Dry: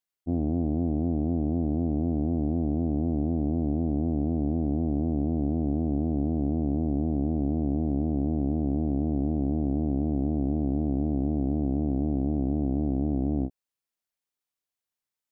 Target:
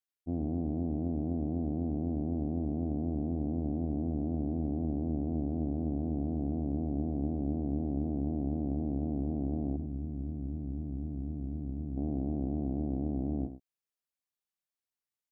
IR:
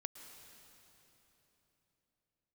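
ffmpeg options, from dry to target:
-filter_complex "[0:a]asettb=1/sr,asplit=3[link_01][link_02][link_03];[link_01]atrim=end=9.764[link_04];[link_02]atrim=start=9.76:end=11.97,asetpts=PTS-STARTPTS,afade=type=in:duration=0.004:curve=qsin,afade=type=out:start_time=2.206:duration=0.004:curve=qsin,equalizer=frequency=640:width=0.5:gain=-14[link_05];[link_03]atrim=start=11.966[link_06];[link_04][link_05]acrossfade=duration=0.004:curve1=hsin:curve2=qsin[link_07];[link_07][link_06]acrossfade=duration=0.004:curve1=qsin:curve2=hsin,asplit=2[link_08][link_09];[link_09]adelay=99.13,volume=-11dB,highshelf=frequency=4000:gain=-2.23[link_10];[link_08][link_10]amix=inputs=2:normalize=0,volume=-6.5dB"

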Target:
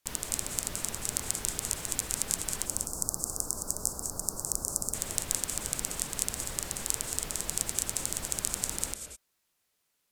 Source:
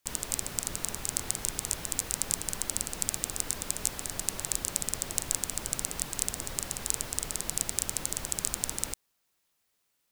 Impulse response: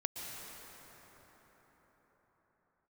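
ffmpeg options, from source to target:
-filter_complex "[0:a]asplit=3[link_01][link_02][link_03];[link_01]afade=type=out:start_time=2.65:duration=0.02[link_04];[link_02]asuperstop=centerf=2600:order=8:qfactor=0.7,afade=type=in:start_time=2.65:duration=0.02,afade=type=out:start_time=4.93:duration=0.02[link_05];[link_03]afade=type=in:start_time=4.93:duration=0.02[link_06];[link_04][link_05][link_06]amix=inputs=3:normalize=0[link_07];[1:a]atrim=start_sample=2205,afade=type=out:start_time=0.19:duration=0.01,atrim=end_sample=8820,asetrate=28665,aresample=44100[link_08];[link_07][link_08]afir=irnorm=-1:irlink=0,volume=-1dB"

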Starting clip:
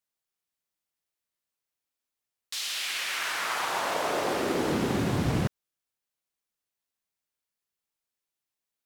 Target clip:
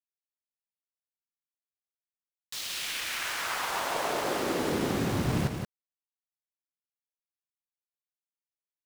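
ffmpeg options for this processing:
ffmpeg -i in.wav -af "aeval=exprs='val(0)*gte(abs(val(0)),0.0224)':channel_layout=same,aecho=1:1:176:0.501,volume=-2.5dB" out.wav

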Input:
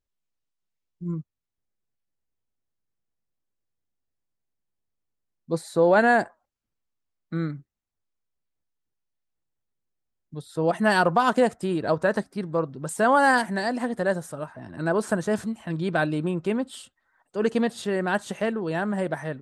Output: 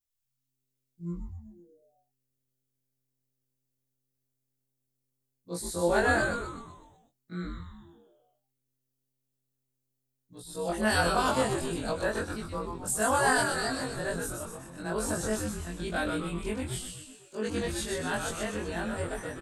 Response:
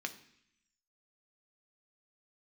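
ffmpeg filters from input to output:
-filter_complex "[0:a]afftfilt=real='re':imag='-im':win_size=2048:overlap=0.75,crystalizer=i=4:c=0,asplit=8[link_01][link_02][link_03][link_04][link_05][link_06][link_07][link_08];[link_02]adelay=125,afreqshift=-130,volume=-4dB[link_09];[link_03]adelay=250,afreqshift=-260,volume=-9.7dB[link_10];[link_04]adelay=375,afreqshift=-390,volume=-15.4dB[link_11];[link_05]adelay=500,afreqshift=-520,volume=-21dB[link_12];[link_06]adelay=625,afreqshift=-650,volume=-26.7dB[link_13];[link_07]adelay=750,afreqshift=-780,volume=-32.4dB[link_14];[link_08]adelay=875,afreqshift=-910,volume=-38.1dB[link_15];[link_01][link_09][link_10][link_11][link_12][link_13][link_14][link_15]amix=inputs=8:normalize=0,volume=-5dB"

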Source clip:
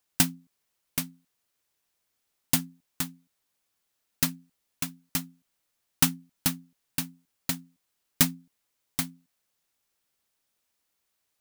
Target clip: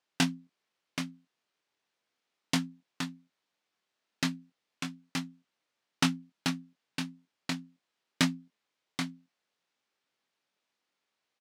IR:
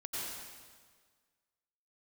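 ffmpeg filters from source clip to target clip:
-filter_complex "[0:a]highpass=180,lowpass=4300,asplit=2[link_01][link_02];[link_02]adelay=23,volume=-8dB[link_03];[link_01][link_03]amix=inputs=2:normalize=0"

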